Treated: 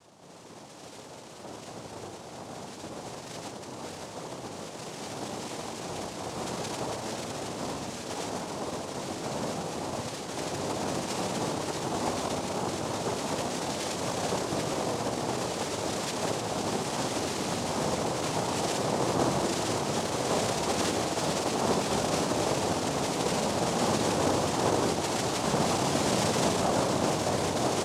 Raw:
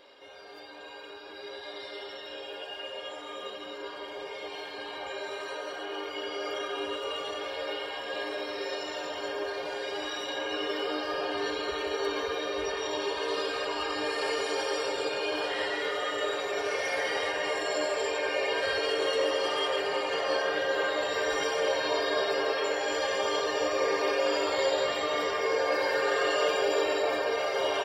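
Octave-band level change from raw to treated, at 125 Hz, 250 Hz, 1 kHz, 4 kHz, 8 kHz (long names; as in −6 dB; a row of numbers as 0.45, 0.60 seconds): can't be measured, +8.5 dB, +2.0 dB, −2.0 dB, +10.0 dB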